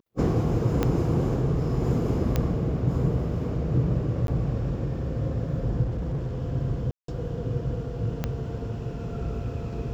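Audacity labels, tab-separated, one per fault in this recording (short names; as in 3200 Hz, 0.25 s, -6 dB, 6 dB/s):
0.830000	0.830000	pop -11 dBFS
2.360000	2.360000	pop -11 dBFS
4.270000	4.280000	gap
5.820000	6.390000	clipped -25 dBFS
6.910000	7.080000	gap 0.173 s
8.240000	8.240000	pop -14 dBFS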